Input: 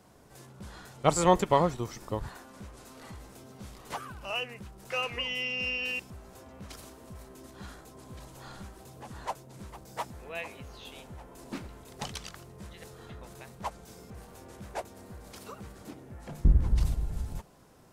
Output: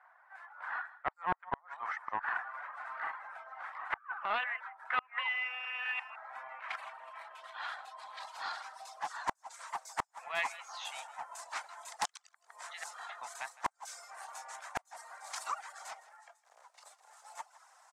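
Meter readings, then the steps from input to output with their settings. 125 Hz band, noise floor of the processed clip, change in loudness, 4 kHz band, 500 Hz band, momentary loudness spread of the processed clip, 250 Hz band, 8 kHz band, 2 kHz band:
-27.5 dB, -71 dBFS, -8.0 dB, -7.0 dB, -15.5 dB, 15 LU, -20.5 dB, -5.0 dB, +1.5 dB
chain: octave divider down 1 oct, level +3 dB; reverse; compression 16:1, threshold -34 dBFS, peak gain reduction 23.5 dB; reverse; reverb removal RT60 0.6 s; companded quantiser 8-bit; level rider gain up to 5 dB; spectral noise reduction 6 dB; steep high-pass 730 Hz 48 dB/octave; high-order bell 4.1 kHz -8.5 dB; on a send: delay 160 ms -18 dB; on the sum: low-pass sweep 1.7 kHz -> 6.6 kHz, 5.79–9.41 s; inverted gate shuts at -26 dBFS, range -33 dB; loudspeaker Doppler distortion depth 0.38 ms; trim +6 dB

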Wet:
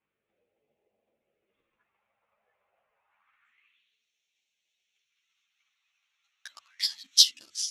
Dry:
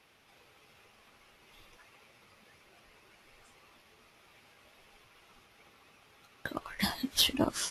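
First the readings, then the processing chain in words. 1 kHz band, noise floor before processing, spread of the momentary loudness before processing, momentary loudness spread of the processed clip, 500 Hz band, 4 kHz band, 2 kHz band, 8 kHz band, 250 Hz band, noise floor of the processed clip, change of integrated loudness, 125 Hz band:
-21.0 dB, -63 dBFS, 14 LU, 11 LU, under -30 dB, +7.0 dB, -8.5 dB, +9.0 dB, under -35 dB, -83 dBFS, +8.0 dB, under -35 dB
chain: local Wiener filter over 9 samples; treble shelf 2.3 kHz +8.5 dB; de-hum 100.7 Hz, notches 3; hum 50 Hz, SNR 35 dB; transient shaper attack +11 dB, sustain +7 dB; phase shifter stages 2, 0.28 Hz, lowest notch 300–1200 Hz; band-pass sweep 580 Hz -> 5.3 kHz, 2.91–4.05 s; three-phase chorus

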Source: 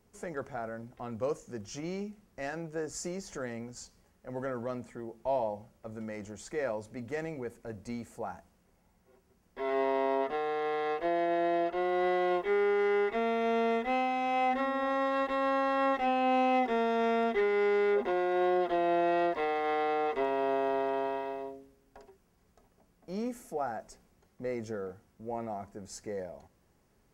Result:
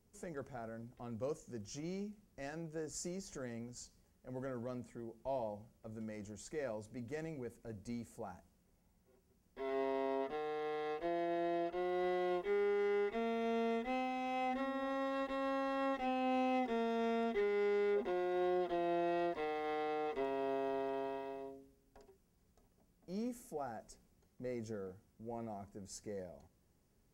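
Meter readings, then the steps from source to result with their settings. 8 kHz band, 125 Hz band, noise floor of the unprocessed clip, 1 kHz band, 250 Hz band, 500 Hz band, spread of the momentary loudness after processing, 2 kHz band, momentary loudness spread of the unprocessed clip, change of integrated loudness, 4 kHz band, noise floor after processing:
no reading, -4.0 dB, -69 dBFS, -10.0 dB, -5.5 dB, -8.0 dB, 14 LU, -10.0 dB, 14 LU, -8.0 dB, -7.0 dB, -74 dBFS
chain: peaking EQ 1.2 kHz -7.5 dB 3 oct; trim -3.5 dB

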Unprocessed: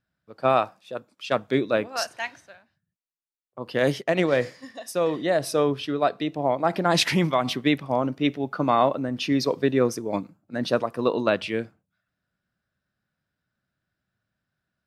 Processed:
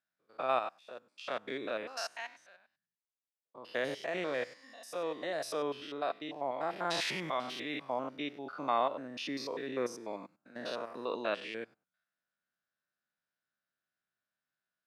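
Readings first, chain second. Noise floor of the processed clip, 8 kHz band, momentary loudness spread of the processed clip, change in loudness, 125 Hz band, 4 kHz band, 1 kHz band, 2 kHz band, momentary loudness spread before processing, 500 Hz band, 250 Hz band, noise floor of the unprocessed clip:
under -85 dBFS, -12.0 dB, 12 LU, -12.5 dB, -22.5 dB, -10.5 dB, -10.0 dB, -10.0 dB, 11 LU, -13.0 dB, -17.0 dB, -84 dBFS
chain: spectrogram pixelated in time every 100 ms; frequency weighting A; trim -7.5 dB

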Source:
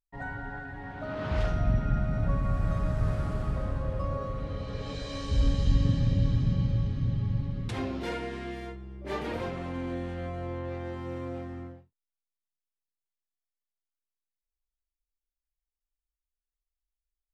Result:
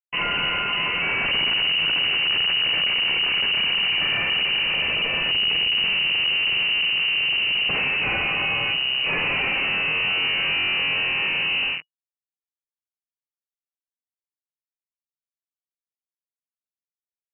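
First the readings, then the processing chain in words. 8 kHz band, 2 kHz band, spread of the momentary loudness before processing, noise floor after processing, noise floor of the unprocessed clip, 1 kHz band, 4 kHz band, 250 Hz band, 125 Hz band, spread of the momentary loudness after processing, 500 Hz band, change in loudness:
no reading, +23.0 dB, 13 LU, under -85 dBFS, under -85 dBFS, +7.5 dB, +29.5 dB, -5.5 dB, -13.0 dB, 3 LU, 0.0 dB, +11.5 dB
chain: fuzz box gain 51 dB, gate -50 dBFS; frequency inversion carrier 2.9 kHz; fifteen-band graphic EQ 160 Hz +8 dB, 400 Hz +4 dB, 1.6 kHz -4 dB; trim -8 dB

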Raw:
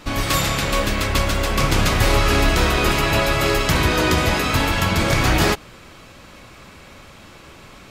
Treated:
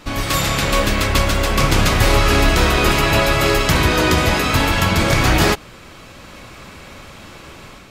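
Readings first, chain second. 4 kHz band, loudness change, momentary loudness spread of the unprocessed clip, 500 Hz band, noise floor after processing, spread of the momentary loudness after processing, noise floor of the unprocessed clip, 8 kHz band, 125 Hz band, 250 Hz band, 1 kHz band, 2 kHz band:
+2.5 dB, +2.5 dB, 3 LU, +3.0 dB, -40 dBFS, 3 LU, -44 dBFS, +2.5 dB, +2.5 dB, +2.5 dB, +2.5 dB, +2.5 dB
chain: level rider gain up to 5 dB

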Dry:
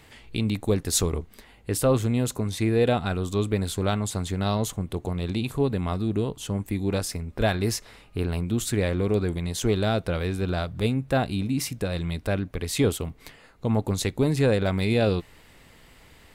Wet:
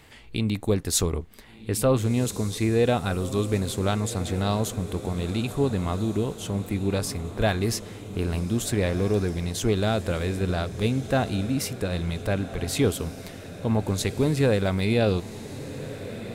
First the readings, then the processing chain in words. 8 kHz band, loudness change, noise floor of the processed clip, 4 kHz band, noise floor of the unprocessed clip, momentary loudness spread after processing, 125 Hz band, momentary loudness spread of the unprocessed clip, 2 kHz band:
+0.5 dB, 0.0 dB, -42 dBFS, +0.5 dB, -53 dBFS, 10 LU, +0.5 dB, 8 LU, +0.5 dB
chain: echo that smears into a reverb 1496 ms, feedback 55%, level -13 dB

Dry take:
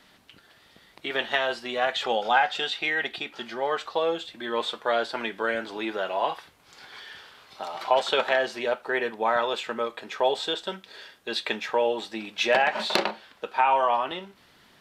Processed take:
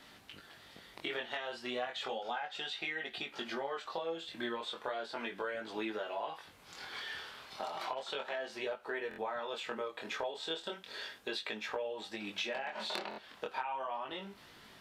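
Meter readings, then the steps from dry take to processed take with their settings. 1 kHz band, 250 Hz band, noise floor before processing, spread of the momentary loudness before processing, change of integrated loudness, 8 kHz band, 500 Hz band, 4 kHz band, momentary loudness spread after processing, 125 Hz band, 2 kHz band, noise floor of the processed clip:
-14.5 dB, -9.0 dB, -58 dBFS, 15 LU, -13.0 dB, -10.0 dB, -13.0 dB, -10.5 dB, 8 LU, -9.0 dB, -12.5 dB, -58 dBFS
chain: compression 12:1, threshold -36 dBFS, peak gain reduction 20.5 dB; chorus 0.34 Hz, delay 18.5 ms, depth 6.5 ms; buffer glitch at 9.09/13.09 s, samples 1024, times 3; trim +3.5 dB

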